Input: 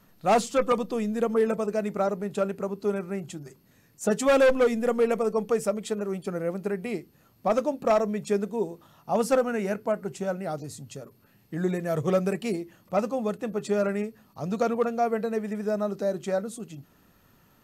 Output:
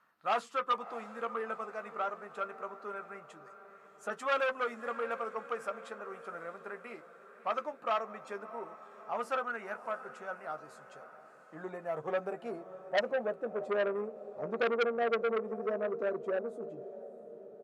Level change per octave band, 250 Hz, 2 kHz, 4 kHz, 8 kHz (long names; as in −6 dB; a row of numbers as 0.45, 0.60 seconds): −17.5 dB, −2.5 dB, −5.0 dB, below −15 dB